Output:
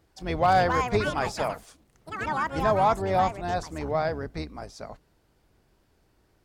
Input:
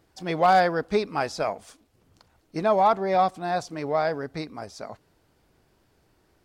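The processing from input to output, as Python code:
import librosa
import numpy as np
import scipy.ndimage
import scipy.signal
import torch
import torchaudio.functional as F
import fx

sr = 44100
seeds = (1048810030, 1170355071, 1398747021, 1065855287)

y = fx.octave_divider(x, sr, octaves=2, level_db=0.0)
y = fx.echo_pitch(y, sr, ms=397, semitones=6, count=2, db_per_echo=-6.0)
y = F.gain(torch.from_numpy(y), -2.5).numpy()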